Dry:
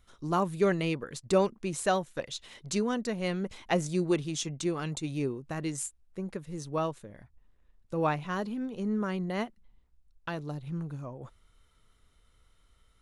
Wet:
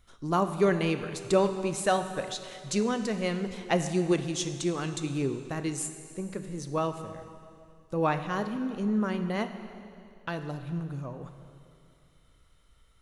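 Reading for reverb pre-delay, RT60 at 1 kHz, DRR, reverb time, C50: 4 ms, 2.5 s, 8.0 dB, 2.5 s, 9.5 dB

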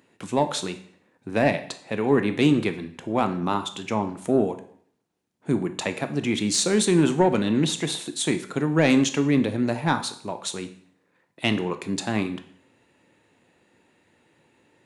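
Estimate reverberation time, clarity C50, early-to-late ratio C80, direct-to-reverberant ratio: 0.60 s, 12.5 dB, 16.5 dB, 8.5 dB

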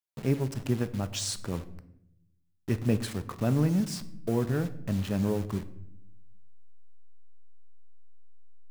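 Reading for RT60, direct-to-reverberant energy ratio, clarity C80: 0.75 s, 11.0 dB, 18.0 dB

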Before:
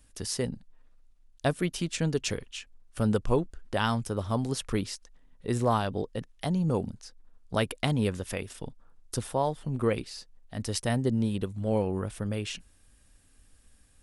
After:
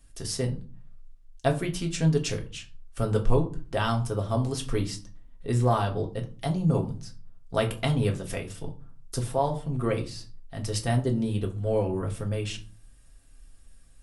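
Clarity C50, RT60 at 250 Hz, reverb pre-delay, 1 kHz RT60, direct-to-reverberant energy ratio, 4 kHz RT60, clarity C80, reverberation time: 13.5 dB, 0.65 s, 3 ms, 0.40 s, 1.0 dB, 0.25 s, 19.0 dB, 0.40 s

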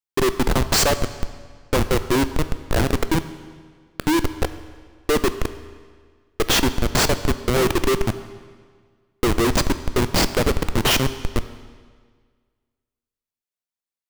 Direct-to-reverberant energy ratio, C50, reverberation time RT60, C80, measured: 11.5 dB, 13.0 dB, 1.7 s, 14.0 dB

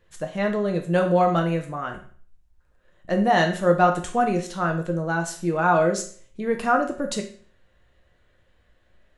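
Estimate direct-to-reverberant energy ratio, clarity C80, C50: 3.0 dB, 14.0 dB, 9.5 dB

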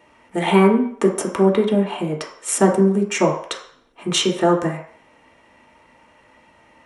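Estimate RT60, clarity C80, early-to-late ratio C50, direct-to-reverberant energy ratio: 0.60 s, 10.0 dB, 6.5 dB, −0.5 dB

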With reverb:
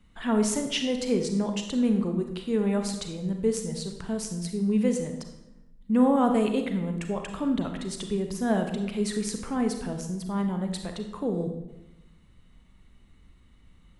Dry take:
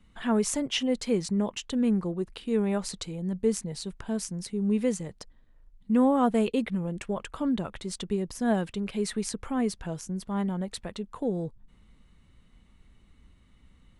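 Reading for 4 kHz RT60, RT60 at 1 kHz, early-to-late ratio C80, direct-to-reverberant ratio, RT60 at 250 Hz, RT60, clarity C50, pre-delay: 0.70 s, 0.85 s, 9.0 dB, 5.0 dB, 1.1 s, 0.95 s, 7.0 dB, 32 ms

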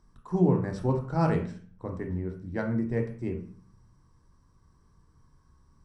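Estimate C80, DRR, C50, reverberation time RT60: 13.0 dB, 3.0 dB, 8.0 dB, 0.45 s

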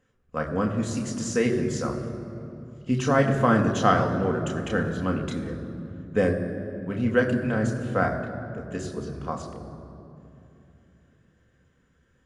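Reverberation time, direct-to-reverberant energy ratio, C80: 2.9 s, 1.5 dB, 9.0 dB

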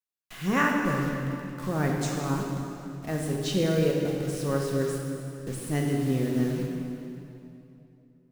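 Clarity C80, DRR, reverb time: 2.5 dB, −0.5 dB, 2.9 s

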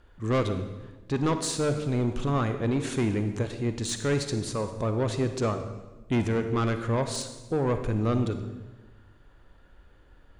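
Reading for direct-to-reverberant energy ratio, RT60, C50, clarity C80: 8.0 dB, 1.2 s, 9.0 dB, 10.5 dB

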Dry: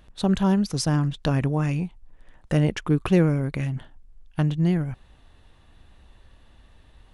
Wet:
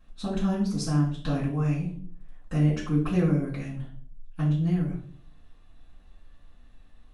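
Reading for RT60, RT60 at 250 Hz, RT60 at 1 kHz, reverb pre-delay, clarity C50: 0.55 s, 0.70 s, 0.45 s, 4 ms, 6.5 dB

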